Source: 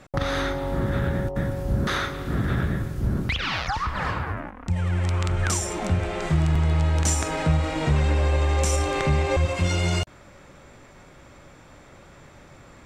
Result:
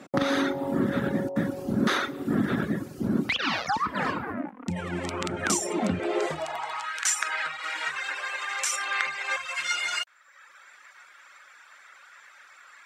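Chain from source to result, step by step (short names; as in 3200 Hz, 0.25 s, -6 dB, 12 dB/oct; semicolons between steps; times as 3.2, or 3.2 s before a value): high-pass sweep 240 Hz -> 1500 Hz, 5.98–6.99; reverb removal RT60 1 s; gain +1 dB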